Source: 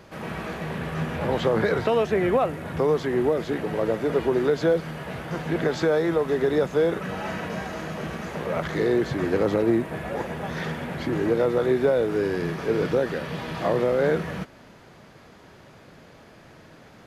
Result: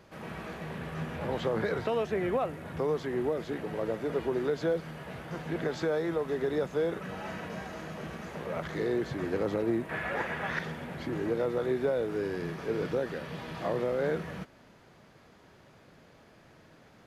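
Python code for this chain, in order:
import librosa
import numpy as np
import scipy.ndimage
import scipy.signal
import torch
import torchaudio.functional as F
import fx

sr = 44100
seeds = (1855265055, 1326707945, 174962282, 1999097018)

y = fx.peak_eq(x, sr, hz=1800.0, db=13.0, octaves=1.9, at=(9.89, 10.59))
y = y * 10.0 ** (-8.0 / 20.0)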